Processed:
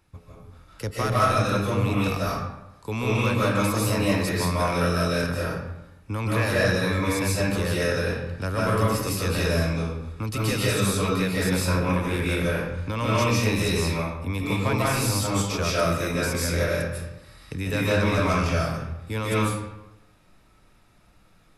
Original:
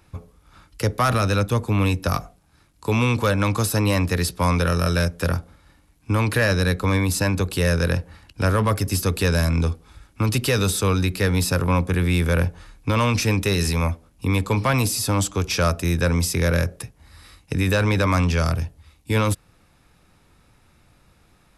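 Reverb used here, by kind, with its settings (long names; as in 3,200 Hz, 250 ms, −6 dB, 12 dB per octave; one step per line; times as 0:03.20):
comb and all-pass reverb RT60 0.93 s, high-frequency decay 0.7×, pre-delay 110 ms, DRR −7 dB
level −9 dB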